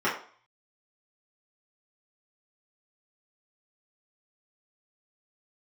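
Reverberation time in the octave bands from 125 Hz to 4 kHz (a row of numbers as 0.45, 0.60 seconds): 0.50, 0.40, 0.45, 0.50, 0.45, 0.45 seconds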